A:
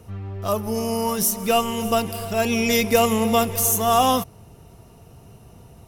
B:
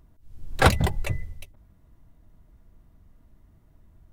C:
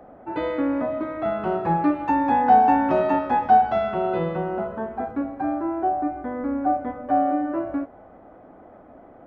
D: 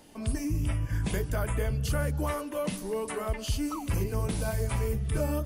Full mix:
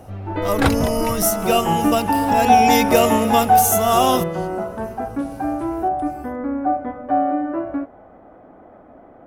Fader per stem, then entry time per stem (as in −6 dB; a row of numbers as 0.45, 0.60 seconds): +1.0, −1.0, +2.0, −11.5 decibels; 0.00, 0.00, 0.00, 0.90 seconds